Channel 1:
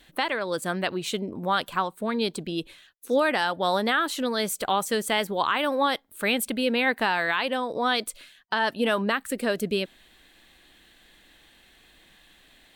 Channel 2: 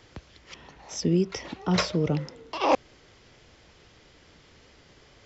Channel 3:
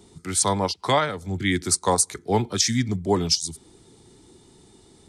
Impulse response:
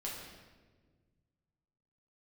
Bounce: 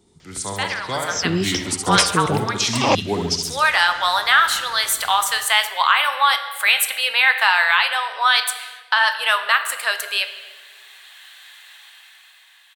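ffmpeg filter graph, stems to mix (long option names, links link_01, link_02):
-filter_complex "[0:a]highpass=frequency=950:width=0.5412,highpass=frequency=950:width=1.3066,adelay=400,volume=0.5dB,asplit=2[link_01][link_02];[link_02]volume=-4dB[link_03];[1:a]highshelf=frequency=2400:gain=11,adelay=200,volume=-2.5dB[link_04];[2:a]volume=-8dB,asplit=2[link_05][link_06];[link_06]volume=-5dB[link_07];[3:a]atrim=start_sample=2205[link_08];[link_03][link_08]afir=irnorm=-1:irlink=0[link_09];[link_07]aecho=0:1:69|138|207|276|345|414|483|552:1|0.56|0.314|0.176|0.0983|0.0551|0.0308|0.0173[link_10];[link_01][link_04][link_05][link_09][link_10]amix=inputs=5:normalize=0,dynaudnorm=framelen=120:gausssize=21:maxgain=11dB"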